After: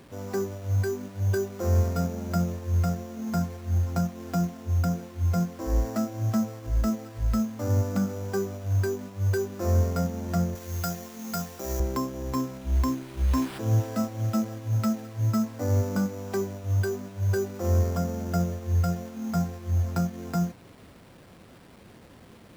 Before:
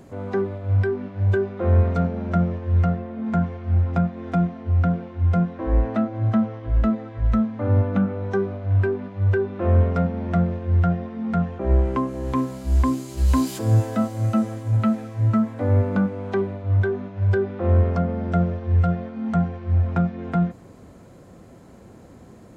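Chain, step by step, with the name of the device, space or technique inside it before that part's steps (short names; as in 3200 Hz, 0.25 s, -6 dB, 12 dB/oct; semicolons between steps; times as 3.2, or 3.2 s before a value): early 8-bit sampler (sample-rate reducer 6400 Hz, jitter 0%; bit-crush 8-bit); 10.55–11.8 tilt +2.5 dB/oct; gain -5.5 dB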